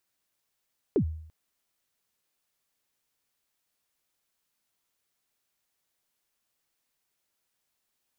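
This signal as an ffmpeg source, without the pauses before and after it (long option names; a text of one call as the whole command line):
ffmpeg -f lavfi -i "aevalsrc='0.126*pow(10,-3*t/0.65)*sin(2*PI*(470*0.084/log(79/470)*(exp(log(79/470)*min(t,0.084)/0.084)-1)+79*max(t-0.084,0)))':duration=0.34:sample_rate=44100" out.wav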